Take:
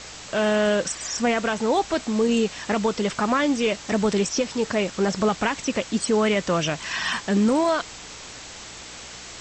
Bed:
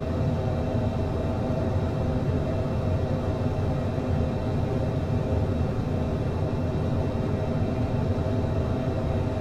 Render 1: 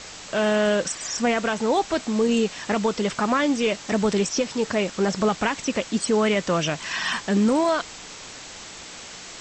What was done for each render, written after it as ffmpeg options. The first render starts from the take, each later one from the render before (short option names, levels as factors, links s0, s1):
-af "bandreject=f=60:t=h:w=4,bandreject=f=120:t=h:w=4"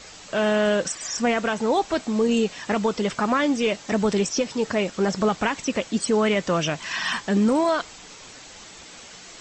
-af "afftdn=nr=6:nf=-40"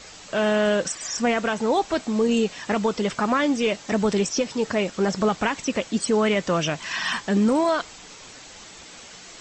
-af anull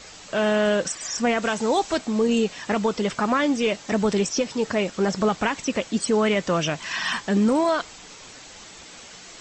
-filter_complex "[0:a]asettb=1/sr,asplit=3[s0][s1][s2];[s0]atrim=end=1.424[s3];[s1]atrim=start=1.42:end=1.98,asetpts=PTS-STARTPTS,afade=t=in:d=0.004:c=qsin,afade=t=out:st=0.556:d=0.004:c=qsin,aemphasis=mode=production:type=cd[s4];[s2]atrim=start=1.976[s5];[s3][s4]acrossfade=d=0.004:c1=hsin:c2=qsin[s6];[s6][s5]acrossfade=d=0.004:c1=qsin:c2=hsin"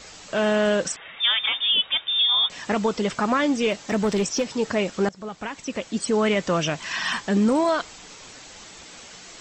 -filter_complex "[0:a]asettb=1/sr,asplit=3[s0][s1][s2];[s0]atrim=end=0.964[s3];[s1]atrim=start=0.96:end=2.5,asetpts=PTS-STARTPTS,afade=t=in:d=0.004:c=qsin,afade=t=out:st=1.536:d=0.004:c=qsin,lowpass=f=3200:t=q:w=0.5098,lowpass=f=3200:t=q:w=0.6013,lowpass=f=3200:t=q:w=0.9,lowpass=f=3200:t=q:w=2.563,afreqshift=-3800[s4];[s2]atrim=start=2.496[s5];[s3][s4]acrossfade=d=0.004:c1=hsin:c2=qsin[s6];[s6][s5]acrossfade=d=0.004:c1=qsin:c2=hsin,asettb=1/sr,asplit=3[s7][s8][s9];[s7]atrim=end=3.714[s10];[s8]atrim=start=3.71:end=4.46,asetpts=PTS-STARTPTS,afade=t=in:d=0.004:c=qsin,afade=t=out:st=0.746:d=0.004:c=qsin,asoftclip=type=hard:threshold=0.141[s11];[s9]atrim=start=4.456[s12];[s10][s11]acrossfade=d=0.004:c1=hsin:c2=qsin[s13];[s13][s12]acrossfade=d=0.004:c1=qsin:c2=hsin,asplit=2[s14][s15];[s14]atrim=end=5.09,asetpts=PTS-STARTPTS,afade=t=out:st=5.086:d=0.004:c=hsin:silence=0.0891251[s16];[s15]atrim=start=5.09,asetpts=PTS-STARTPTS,afade=t=in:d=1.19:silence=0.0891251[s17];[s16][s17]concat=n=2:v=0:a=1"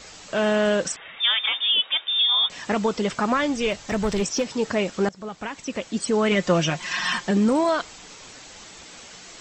-filter_complex "[0:a]asettb=1/sr,asplit=3[s0][s1][s2];[s0]atrim=end=1.184[s3];[s1]atrim=start=1.18:end=2.41,asetpts=PTS-STARTPTS,afade=t=in:d=0.004:c=qsin,afade=t=out:st=1.226:d=0.004:c=qsin,highpass=290[s4];[s2]atrim=start=2.406[s5];[s3][s4]acrossfade=d=0.004:c1=hsin:c2=qsin[s6];[s6][s5]acrossfade=d=0.004:c1=qsin:c2=hsin,asplit=3[s7][s8][s9];[s7]afade=t=out:st=3.34:d=0.02[s10];[s8]asubboost=boost=6:cutoff=98,afade=t=in:st=3.34:d=0.02,afade=t=out:st=4.2:d=0.02[s11];[s9]afade=t=in:st=4.2:d=0.02[s12];[s10][s11][s12]amix=inputs=3:normalize=0,asettb=1/sr,asplit=3[s13][s14][s15];[s13]atrim=end=6.314[s16];[s14]atrim=start=6.31:end=7.31,asetpts=PTS-STARTPTS,afade=t=in:d=0.004:c=qsin,afade=t=out:st=0.996:d=0.004:c=qsin,aecho=1:1:5.6:0.65,atrim=end_sample=44100[s17];[s15]atrim=start=7.306[s18];[s16][s17]acrossfade=d=0.004:c1=hsin:c2=qsin[s19];[s19][s18]acrossfade=d=0.004:c1=qsin:c2=hsin"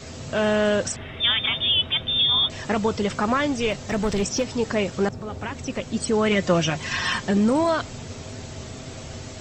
-filter_complex "[1:a]volume=0.266[s0];[0:a][s0]amix=inputs=2:normalize=0"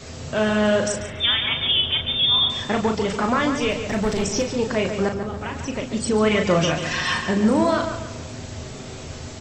-filter_complex "[0:a]asplit=2[s0][s1];[s1]adelay=37,volume=0.501[s2];[s0][s2]amix=inputs=2:normalize=0,asplit=2[s3][s4];[s4]adelay=142,lowpass=f=3300:p=1,volume=0.447,asplit=2[s5][s6];[s6]adelay=142,lowpass=f=3300:p=1,volume=0.42,asplit=2[s7][s8];[s8]adelay=142,lowpass=f=3300:p=1,volume=0.42,asplit=2[s9][s10];[s10]adelay=142,lowpass=f=3300:p=1,volume=0.42,asplit=2[s11][s12];[s12]adelay=142,lowpass=f=3300:p=1,volume=0.42[s13];[s3][s5][s7][s9][s11][s13]amix=inputs=6:normalize=0"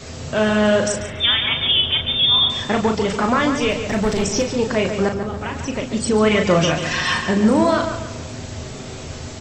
-af "volume=1.41"